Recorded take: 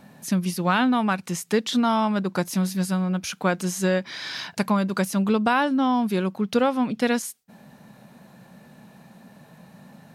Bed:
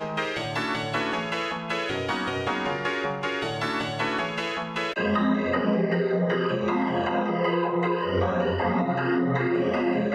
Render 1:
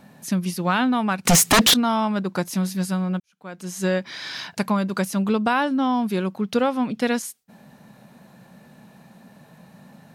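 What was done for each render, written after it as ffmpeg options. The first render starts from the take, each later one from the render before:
-filter_complex "[0:a]asettb=1/sr,asplit=3[s0][s1][s2];[s0]atrim=end=1.254[s3];[s1]atrim=start=1.25:end=1.74,asetpts=PTS-STARTPTS,afade=t=in:d=0.004:c=qsin,afade=t=out:st=0.486:d=0.004:c=qsin,aeval=exprs='0.299*sin(PI/2*6.31*val(0)/0.299)':c=same[s4];[s2]atrim=start=1.736[s5];[s3][s4]acrossfade=d=0.004:c1=hsin:c2=qsin[s6];[s6][s5]acrossfade=d=0.004:c1=qsin:c2=hsin,asplit=2[s7][s8];[s7]atrim=end=3.2,asetpts=PTS-STARTPTS,afade=t=out:st=3.196:d=0.004:c=hsin[s9];[s8]atrim=start=3.2,asetpts=PTS-STARTPTS,afade=t=in:d=0.67:c=qua[s10];[s9][s10]concat=n=2:v=0:a=1"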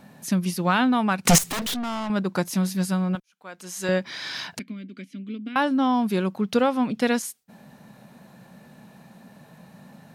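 -filter_complex "[0:a]asettb=1/sr,asplit=3[s0][s1][s2];[s0]atrim=end=1.384[s3];[s1]atrim=start=1.38:end=2.1,asetpts=PTS-STARTPTS,afade=t=in:d=0.004:c=qsin,afade=t=out:st=0.716:d=0.004:c=qsin,aeval=exprs='(tanh(22.4*val(0)+0.35)-tanh(0.35))/22.4':c=same[s4];[s2]atrim=start=2.096[s5];[s3][s4]acrossfade=d=0.004:c1=hsin:c2=qsin[s6];[s6][s5]acrossfade=d=0.004:c1=qsin:c2=hsin,asettb=1/sr,asplit=3[s7][s8][s9];[s7]atrim=end=3.154[s10];[s8]atrim=start=3.15:end=3.89,asetpts=PTS-STARTPTS,afade=t=in:d=0.004:c=qsin,afade=t=out:st=0.736:d=0.004:c=qsin,equalizer=f=100:w=0.34:g=-13.5[s11];[s9]atrim=start=3.886[s12];[s10][s11]acrossfade=d=0.004:c1=hsin:c2=qsin[s13];[s13][s12]acrossfade=d=0.004:c1=qsin:c2=hsin,asettb=1/sr,asplit=3[s14][s15][s16];[s14]atrim=end=4.594[s17];[s15]atrim=start=4.59:end=5.56,asetpts=PTS-STARTPTS,afade=t=in:d=0.004:c=qsin,afade=t=out:st=0.966:d=0.004:c=qsin,asplit=3[s18][s19][s20];[s18]bandpass=f=270:t=q:w=8,volume=1[s21];[s19]bandpass=f=2290:t=q:w=8,volume=0.501[s22];[s20]bandpass=f=3010:t=q:w=8,volume=0.355[s23];[s21][s22][s23]amix=inputs=3:normalize=0[s24];[s16]atrim=start=5.556[s25];[s17][s24]acrossfade=d=0.004:c1=hsin:c2=qsin[s26];[s26][s25]acrossfade=d=0.004:c1=qsin:c2=hsin"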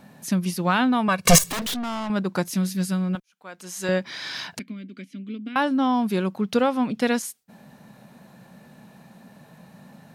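-filter_complex "[0:a]asettb=1/sr,asplit=3[s0][s1][s2];[s0]atrim=end=1.084[s3];[s1]atrim=start=1.08:end=1.51,asetpts=PTS-STARTPTS,afade=t=in:d=0.004:c=qsin,afade=t=out:st=0.426:d=0.004:c=qsin,aecho=1:1:1.8:0.98,atrim=end_sample=18963[s4];[s2]atrim=start=1.506[s5];[s3][s4]acrossfade=d=0.004:c1=hsin:c2=qsin[s6];[s6][s5]acrossfade=d=0.004:c1=qsin:c2=hsin,asettb=1/sr,asplit=3[s7][s8][s9];[s7]atrim=end=2.474[s10];[s8]atrim=start=2.47:end=3.15,asetpts=PTS-STARTPTS,afade=t=in:d=0.004:c=qsin,afade=t=out:st=0.676:d=0.004:c=qsin,equalizer=f=850:w=1.3:g=-7.5[s11];[s9]atrim=start=3.146[s12];[s10][s11]acrossfade=d=0.004:c1=hsin:c2=qsin[s13];[s13][s12]acrossfade=d=0.004:c1=qsin:c2=hsin"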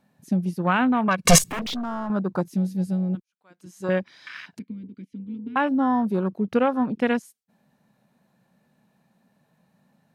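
-af "afwtdn=0.0282"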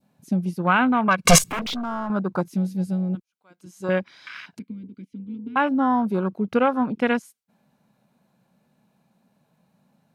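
-af "bandreject=f=1800:w=8.7,adynamicequalizer=threshold=0.0158:dfrequency=1600:dqfactor=0.79:tfrequency=1600:tqfactor=0.79:attack=5:release=100:ratio=0.375:range=2.5:mode=boostabove:tftype=bell"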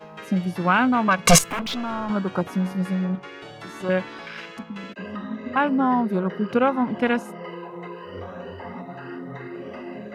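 -filter_complex "[1:a]volume=0.266[s0];[0:a][s0]amix=inputs=2:normalize=0"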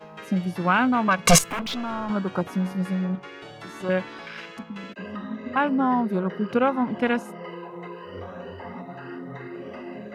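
-af "volume=0.841"

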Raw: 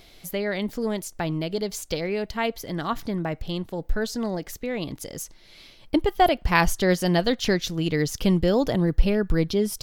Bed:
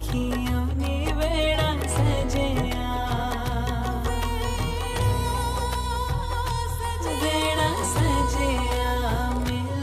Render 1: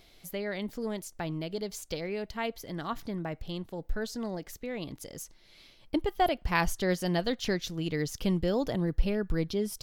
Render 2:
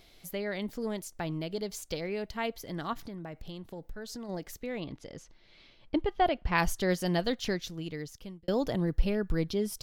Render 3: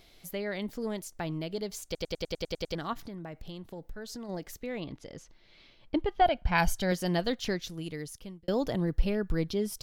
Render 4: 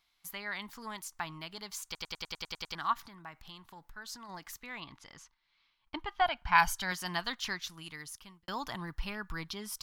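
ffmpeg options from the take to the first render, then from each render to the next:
-af "volume=0.422"
-filter_complex "[0:a]asplit=3[s0][s1][s2];[s0]afade=t=out:st=2.93:d=0.02[s3];[s1]acompressor=threshold=0.0141:ratio=6:attack=3.2:release=140:knee=1:detection=peak,afade=t=in:st=2.93:d=0.02,afade=t=out:st=4.28:d=0.02[s4];[s2]afade=t=in:st=4.28:d=0.02[s5];[s3][s4][s5]amix=inputs=3:normalize=0,asettb=1/sr,asplit=3[s6][s7][s8];[s6]atrim=end=4.804[s9];[s7]atrim=start=4.8:end=6.58,asetpts=PTS-STARTPTS,afade=t=in:d=0.004:c=qsin,afade=t=out:st=1.776:d=0.004:c=qsin,lowpass=3800[s10];[s8]atrim=start=6.576[s11];[s9][s10]acrossfade=d=0.004:c1=hsin:c2=qsin[s12];[s12][s11]acrossfade=d=0.004:c1=qsin:c2=hsin,asplit=2[s13][s14];[s13]atrim=end=8.48,asetpts=PTS-STARTPTS,afade=t=out:st=7.29:d=1.19[s15];[s14]atrim=start=8.48,asetpts=PTS-STARTPTS,afade=t=in:d=0.004:c=hsin[s16];[s15][s16]concat=n=2:v=0:a=1"
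-filter_complex "[0:a]asettb=1/sr,asplit=3[s0][s1][s2];[s0]atrim=end=6.214[s3];[s1]atrim=start=6.21:end=6.92,asetpts=PTS-STARTPTS,afade=t=in:d=0.004:c=qsin,afade=t=out:st=0.706:d=0.004:c=qsin,aecho=1:1:1.3:0.51,atrim=end_sample=31311[s4];[s2]atrim=start=6.916[s5];[s3][s4]acrossfade=d=0.004:c1=hsin:c2=qsin[s6];[s6][s5]acrossfade=d=0.004:c1=qsin:c2=hsin,asettb=1/sr,asplit=3[s7][s8][s9];[s7]atrim=end=7.694[s10];[s8]atrim=start=7.69:end=8.2,asetpts=PTS-STARTPTS,afade=t=in:d=0.004:c=qsin,afade=t=out:st=0.506:d=0.004:c=qsin,equalizer=f=10000:w=2.4:g=14[s11];[s9]atrim=start=8.196[s12];[s10][s11]acrossfade=d=0.004:c1=hsin:c2=qsin[s13];[s13][s12]acrossfade=d=0.004:c1=qsin:c2=hsin,asplit=10[s14][s15][s16][s17][s18][s19][s20][s21][s22][s23];[s14]atrim=end=1.952[s24];[s15]atrim=start=1.848:end=1.952[s25];[s16]atrim=start=1.848:end=1.952[s26];[s17]atrim=start=1.848:end=1.952[s27];[s18]atrim=start=1.848:end=1.952[s28];[s19]atrim=start=1.848:end=1.952[s29];[s20]atrim=start=1.848:end=1.952[s30];[s21]atrim=start=1.848:end=1.952[s31];[s22]atrim=start=1.848:end=1.952[s32];[s23]atrim=start=2.748[s33];[s24][s25]acrossfade=d=0.004:c1=hsin:c2=hsin[s34];[s34][s26]acrossfade=d=0.004:c1=hsin:c2=hsin[s35];[s35][s27]acrossfade=d=0.004:c1=hsin:c2=hsin[s36];[s36][s28]acrossfade=d=0.004:c1=hsin:c2=hsin[s37];[s37][s29]acrossfade=d=0.004:c1=hsin:c2=hsin[s38];[s38][s30]acrossfade=d=0.004:c1=hsin:c2=hsin[s39];[s39][s31]acrossfade=d=0.004:c1=hsin:c2=hsin[s40];[s40][s32]acrossfade=d=0.004:c1=hsin:c2=hsin[s41];[s41][s33]acrossfade=d=0.004:c1=hsin:c2=hsin"
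-af "agate=range=0.178:threshold=0.00251:ratio=16:detection=peak,lowshelf=f=730:t=q:w=3:g=-11.5"

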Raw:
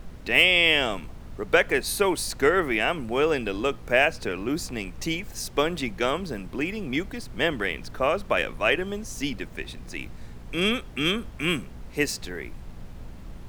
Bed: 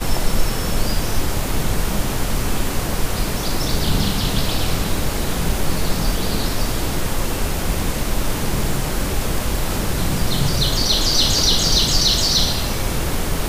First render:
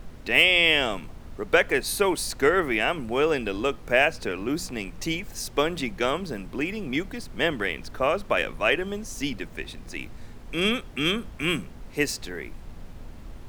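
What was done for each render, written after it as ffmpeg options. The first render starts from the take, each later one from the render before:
-af "bandreject=f=60:t=h:w=4,bandreject=f=120:t=h:w=4,bandreject=f=180:t=h:w=4"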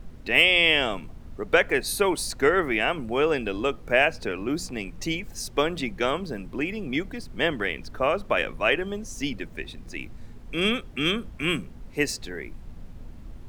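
-af "afftdn=nr=6:nf=-43"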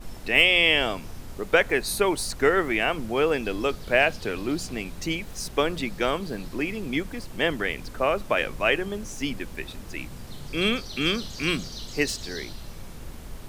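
-filter_complex "[1:a]volume=0.075[s0];[0:a][s0]amix=inputs=2:normalize=0"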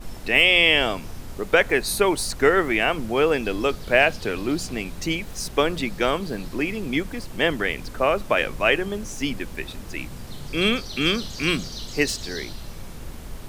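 -af "volume=1.41,alimiter=limit=0.708:level=0:latency=1"

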